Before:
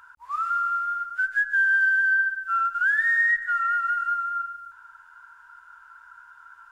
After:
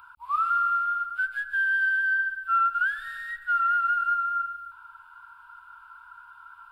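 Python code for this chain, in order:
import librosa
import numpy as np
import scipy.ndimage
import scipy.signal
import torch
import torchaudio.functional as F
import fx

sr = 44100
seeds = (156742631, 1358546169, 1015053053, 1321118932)

y = fx.fixed_phaser(x, sr, hz=1800.0, stages=6)
y = y * 10.0 ** (4.0 / 20.0)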